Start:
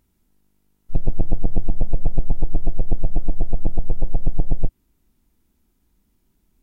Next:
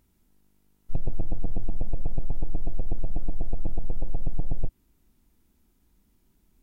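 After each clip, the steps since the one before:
brickwall limiter −15.5 dBFS, peak gain reduction 10.5 dB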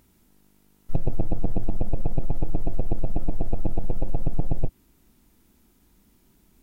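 low-shelf EQ 79 Hz −7.5 dB
level +8.5 dB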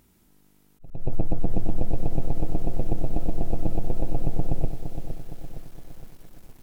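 backwards echo 107 ms −11.5 dB
volume swells 228 ms
feedback echo at a low word length 463 ms, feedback 55%, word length 8 bits, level −8 dB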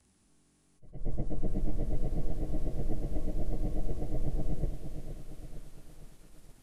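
partials spread apart or drawn together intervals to 90%
level −4 dB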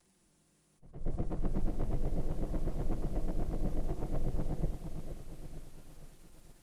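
lower of the sound and its delayed copy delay 5.7 ms

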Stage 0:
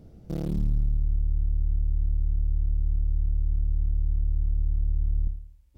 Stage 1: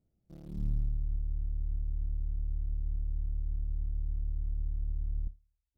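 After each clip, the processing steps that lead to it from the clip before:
notch filter 470 Hz, Q 12
expander for the loud parts 2.5 to 1, over −36 dBFS
level −5.5 dB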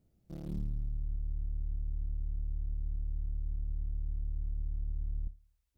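downward compressor 4 to 1, threshold −39 dBFS, peak gain reduction 11.5 dB
level +6 dB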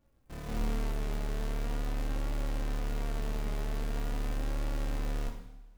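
each half-wave held at its own peak
flanger 0.43 Hz, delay 3.5 ms, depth 1.3 ms, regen +43%
coupled-rooms reverb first 0.79 s, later 2.6 s, from −21 dB, DRR 2 dB

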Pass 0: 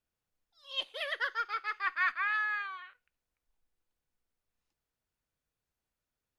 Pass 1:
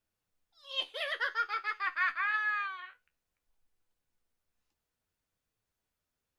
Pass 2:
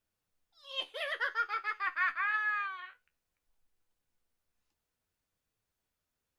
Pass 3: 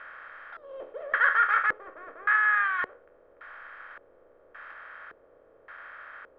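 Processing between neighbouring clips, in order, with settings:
in parallel at 0 dB: brickwall limiter −27.5 dBFS, peak gain reduction 8.5 dB; on the sum: flanger 0.54 Hz, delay 9 ms, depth 5 ms, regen +53%
dynamic equaliser 4,300 Hz, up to −5 dB, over −50 dBFS, Q 1.3
compressor on every frequency bin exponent 0.4; auto-filter low-pass square 0.88 Hz 450–1,600 Hz

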